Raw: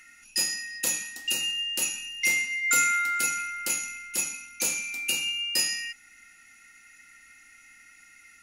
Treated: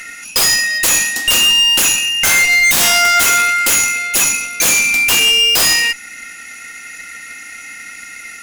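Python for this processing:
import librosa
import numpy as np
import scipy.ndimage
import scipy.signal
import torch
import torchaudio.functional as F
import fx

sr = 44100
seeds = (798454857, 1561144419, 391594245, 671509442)

y = scipy.signal.sosfilt(scipy.signal.butter(2, 150.0, 'highpass', fs=sr, output='sos'), x)
y = fx.fold_sine(y, sr, drive_db=16, ceiling_db=-10.0)
y = fx.cheby_harmonics(y, sr, harmonics=(2, 8), levels_db=(-11, -22), full_scale_db=-6.5)
y = y * librosa.db_to_amplitude(1.5)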